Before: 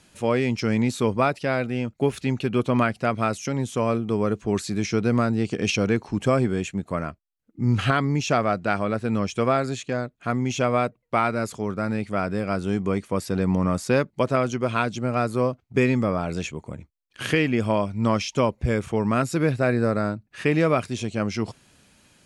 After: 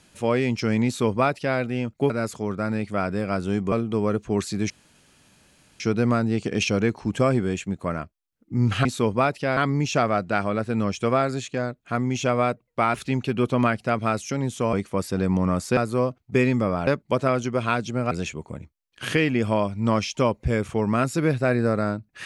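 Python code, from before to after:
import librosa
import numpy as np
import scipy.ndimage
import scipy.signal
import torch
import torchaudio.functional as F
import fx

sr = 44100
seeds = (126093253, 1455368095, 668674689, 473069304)

y = fx.edit(x, sr, fx.duplicate(start_s=0.86, length_s=0.72, to_s=7.92),
    fx.swap(start_s=2.1, length_s=1.79, other_s=11.29, other_length_s=1.62),
    fx.insert_room_tone(at_s=4.87, length_s=1.1),
    fx.move(start_s=15.19, length_s=1.1, to_s=13.95), tone=tone)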